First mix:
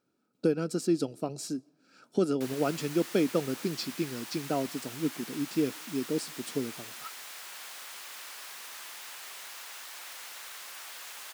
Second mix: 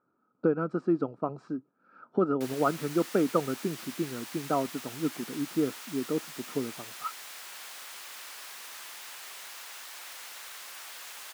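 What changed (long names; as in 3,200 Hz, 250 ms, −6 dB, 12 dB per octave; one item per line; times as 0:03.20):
speech: add low-pass with resonance 1,200 Hz, resonance Q 3.7
reverb: off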